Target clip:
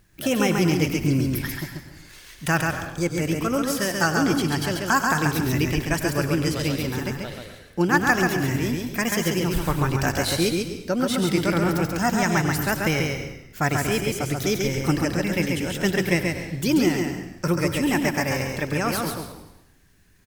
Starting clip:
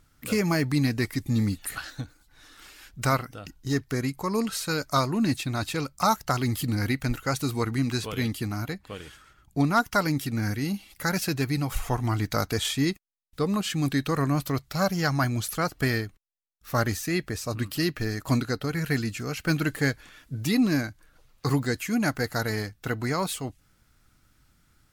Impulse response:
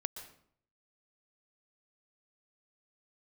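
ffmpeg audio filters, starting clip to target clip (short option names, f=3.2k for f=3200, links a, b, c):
-filter_complex "[0:a]asplit=7[a][b][c][d][e][f][g];[b]adelay=119,afreqshift=-33,volume=-12.5dB[h];[c]adelay=238,afreqshift=-66,volume=-17.7dB[i];[d]adelay=357,afreqshift=-99,volume=-22.9dB[j];[e]adelay=476,afreqshift=-132,volume=-28.1dB[k];[f]adelay=595,afreqshift=-165,volume=-33.3dB[l];[g]adelay=714,afreqshift=-198,volume=-38.5dB[m];[a][h][i][j][k][l][m]amix=inputs=7:normalize=0,asetrate=54243,aresample=44100,asplit=2[n][o];[1:a]atrim=start_sample=2205,asetrate=48510,aresample=44100,adelay=136[p];[o][p]afir=irnorm=-1:irlink=0,volume=-1.5dB[q];[n][q]amix=inputs=2:normalize=0,volume=2dB"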